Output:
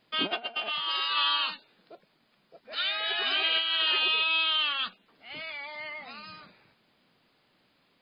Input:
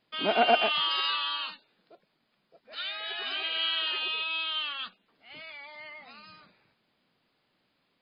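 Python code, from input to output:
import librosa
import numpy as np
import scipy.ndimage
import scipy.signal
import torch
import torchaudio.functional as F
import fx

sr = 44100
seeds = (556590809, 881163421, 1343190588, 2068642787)

y = fx.over_compress(x, sr, threshold_db=-31.0, ratio=-0.5)
y = F.gain(torch.from_numpy(y), 3.5).numpy()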